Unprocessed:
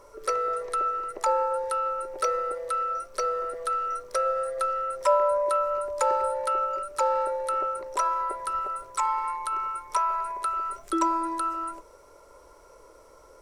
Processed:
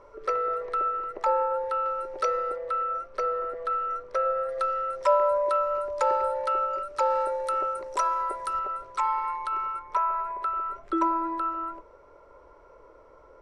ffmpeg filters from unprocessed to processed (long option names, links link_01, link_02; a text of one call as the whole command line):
ffmpeg -i in.wav -af "asetnsamples=nb_out_samples=441:pad=0,asendcmd='1.86 lowpass f 4500;2.56 lowpass f 2500;4.49 lowpass f 4800;7.1 lowpass f 8500;8.59 lowpass f 3900;9.79 lowpass f 2200',lowpass=2800" out.wav